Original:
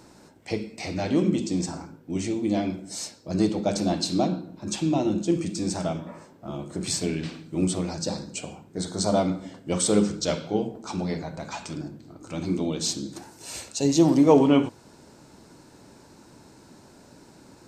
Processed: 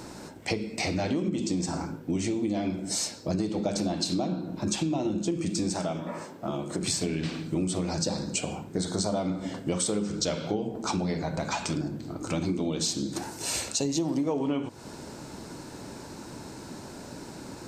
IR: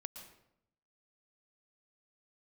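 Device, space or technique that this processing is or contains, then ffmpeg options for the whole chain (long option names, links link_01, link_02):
serial compression, leveller first: -filter_complex "[0:a]acompressor=threshold=-24dB:ratio=2.5,acompressor=threshold=-36dB:ratio=4,asettb=1/sr,asplit=3[link_01][link_02][link_03];[link_01]atrim=end=5.744[link_04];[link_02]atrim=start=5.74:end=6.82,asetpts=PTS-STARTPTS,afade=type=in:duration=0.004:curve=qsin,afade=type=out:start_time=1.076:duration=0.004:curve=qsin,highpass=frequency=190:poles=1[link_05];[link_03]atrim=start=6.816[link_06];[link_04][link_05]acrossfade=duration=0.004:curve1=hsin:curve2=qsin[link_07];[link_07][link_06]acrossfade=duration=0.004:curve1=qsin:curve2=hsin,volume=9dB"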